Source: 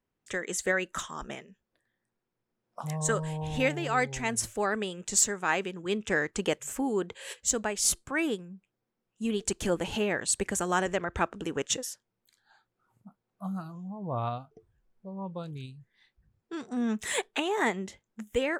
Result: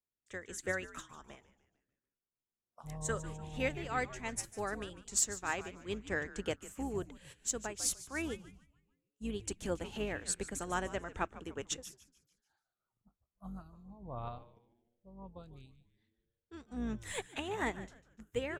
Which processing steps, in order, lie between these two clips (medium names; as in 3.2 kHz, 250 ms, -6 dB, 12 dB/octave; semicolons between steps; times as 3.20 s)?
octave divider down 2 oct, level -5 dB; frequency-shifting echo 148 ms, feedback 46%, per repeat -120 Hz, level -11.5 dB; upward expansion 1.5:1, over -47 dBFS; trim -6.5 dB